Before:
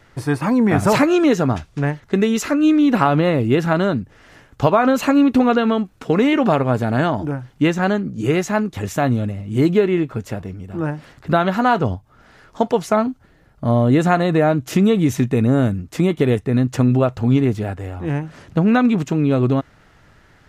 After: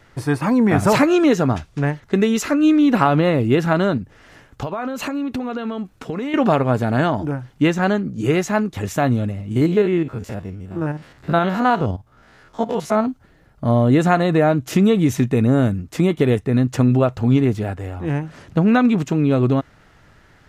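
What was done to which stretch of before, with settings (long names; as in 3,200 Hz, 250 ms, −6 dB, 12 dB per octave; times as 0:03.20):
0:03.97–0:06.34: downward compressor, threshold −22 dBFS
0:09.51–0:13.06: spectrum averaged block by block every 50 ms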